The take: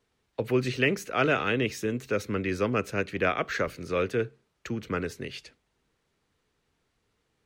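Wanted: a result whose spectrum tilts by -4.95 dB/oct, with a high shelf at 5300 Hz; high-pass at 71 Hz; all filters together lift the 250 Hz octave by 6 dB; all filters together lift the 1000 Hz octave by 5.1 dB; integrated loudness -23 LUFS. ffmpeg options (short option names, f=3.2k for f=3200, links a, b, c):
-af "highpass=71,equalizer=f=250:t=o:g=7,equalizer=f=1k:t=o:g=7.5,highshelf=f=5.3k:g=-4,volume=2dB"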